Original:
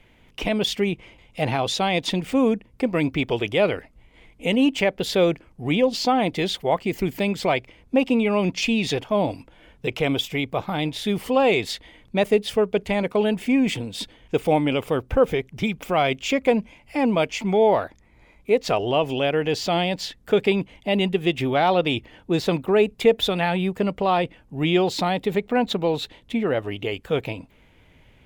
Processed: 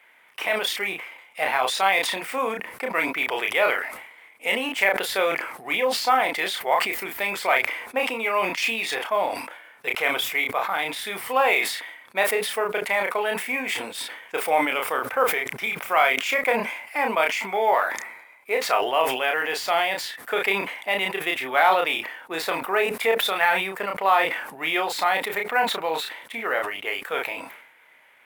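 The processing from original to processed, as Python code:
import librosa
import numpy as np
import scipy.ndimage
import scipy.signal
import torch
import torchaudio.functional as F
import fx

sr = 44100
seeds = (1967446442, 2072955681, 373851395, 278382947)

p1 = scipy.signal.sosfilt(scipy.signal.butter(2, 1200.0, 'highpass', fs=sr, output='sos'), x)
p2 = fx.band_shelf(p1, sr, hz=4300.0, db=-10.5, octaves=1.7)
p3 = fx.sample_hold(p2, sr, seeds[0], rate_hz=14000.0, jitter_pct=0)
p4 = p2 + (p3 * librosa.db_to_amplitude(-11.0))
p5 = fx.doubler(p4, sr, ms=31.0, db=-6.0)
p6 = fx.sustainer(p5, sr, db_per_s=63.0)
y = p6 * librosa.db_to_amplitude(6.5)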